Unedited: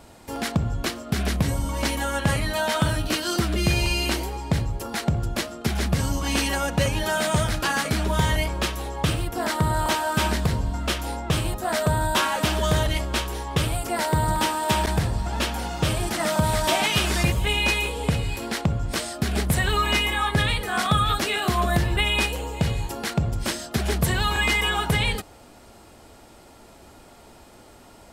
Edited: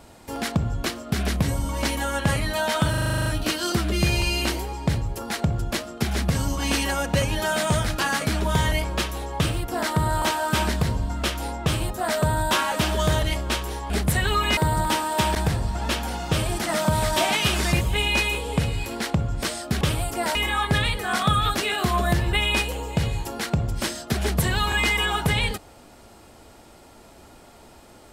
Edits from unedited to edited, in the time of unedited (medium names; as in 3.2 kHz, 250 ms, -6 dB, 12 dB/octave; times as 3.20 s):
2.90 s: stutter 0.04 s, 10 plays
13.54–14.08 s: swap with 19.32–19.99 s